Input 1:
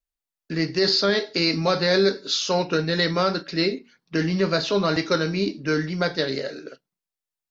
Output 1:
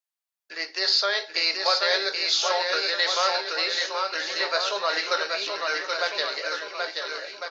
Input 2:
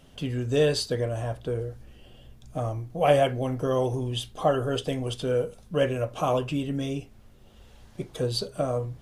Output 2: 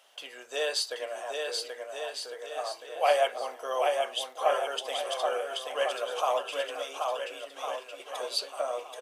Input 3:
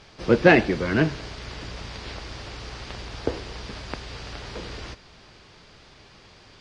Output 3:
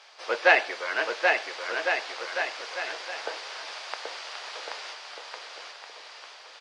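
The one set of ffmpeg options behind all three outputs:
-filter_complex "[0:a]highpass=f=620:w=0.5412,highpass=f=620:w=1.3066,asplit=2[a][b];[b]aecho=0:1:780|1404|1903|2303|2622:0.631|0.398|0.251|0.158|0.1[c];[a][c]amix=inputs=2:normalize=0"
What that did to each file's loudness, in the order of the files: -1.5, -4.0, -3.0 LU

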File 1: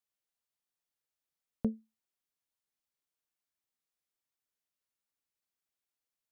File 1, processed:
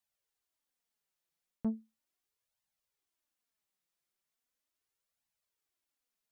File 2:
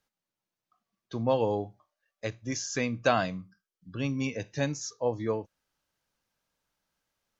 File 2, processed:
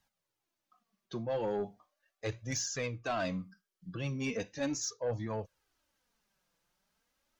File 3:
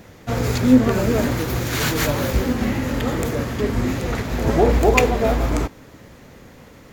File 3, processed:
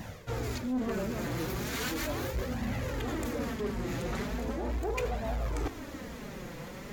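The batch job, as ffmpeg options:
-af "areverse,acompressor=threshold=-31dB:ratio=8,areverse,flanger=delay=1:depth=5.1:regen=-4:speed=0.38:shape=triangular,asoftclip=type=tanh:threshold=-31.5dB,volume=5.5dB"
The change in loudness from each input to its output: -1.5, -5.5, -15.0 LU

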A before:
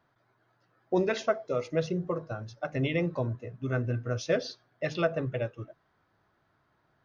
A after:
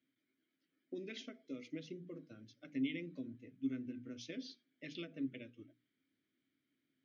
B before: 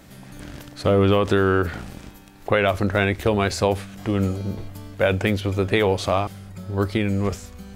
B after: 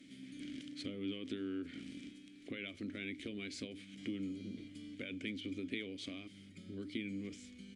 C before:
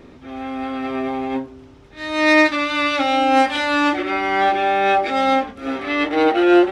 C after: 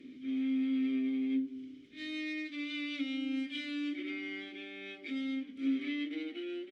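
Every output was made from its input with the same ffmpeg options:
-filter_complex "[0:a]acompressor=threshold=-27dB:ratio=6,equalizer=f=1.9k:t=o:w=1.4:g=-3.5,aresample=22050,aresample=44100,asplit=3[a][b][c];[a]bandpass=f=270:t=q:w=8,volume=0dB[d];[b]bandpass=f=2.29k:t=q:w=8,volume=-6dB[e];[c]bandpass=f=3.01k:t=q:w=8,volume=-9dB[f];[d][e][f]amix=inputs=3:normalize=0,aemphasis=mode=production:type=75fm,bandreject=f=60:t=h:w=6,bandreject=f=120:t=h:w=6,bandreject=f=180:t=h:w=6,bandreject=f=240:t=h:w=6,bandreject=f=300:t=h:w=6,volume=2.5dB"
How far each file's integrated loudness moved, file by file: -14.0, -22.5, -18.0 LU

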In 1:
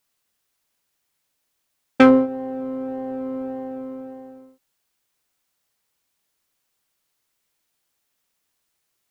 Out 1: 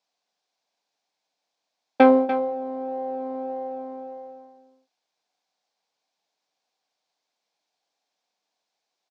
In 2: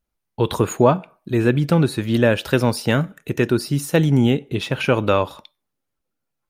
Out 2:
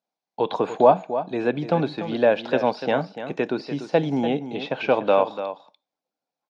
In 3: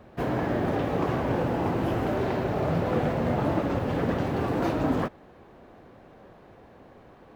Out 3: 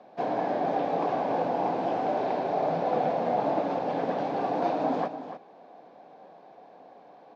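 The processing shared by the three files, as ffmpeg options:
-filter_complex "[0:a]highpass=f=210:w=0.5412,highpass=f=210:w=1.3066,equalizer=f=230:t=q:w=4:g=-7,equalizer=f=360:t=q:w=4:g=-8,equalizer=f=740:t=q:w=4:g=8,equalizer=f=1.3k:t=q:w=4:g=-8,equalizer=f=1.9k:t=q:w=4:g=-7,equalizer=f=2.9k:t=q:w=4:g=-6,lowpass=f=5.6k:w=0.5412,lowpass=f=5.6k:w=1.3066,acrossover=split=3800[a][b];[b]acompressor=threshold=-56dB:ratio=4:attack=1:release=60[c];[a][c]amix=inputs=2:normalize=0,aecho=1:1:292:0.282"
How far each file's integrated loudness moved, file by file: -2.5, -3.5, -1.0 LU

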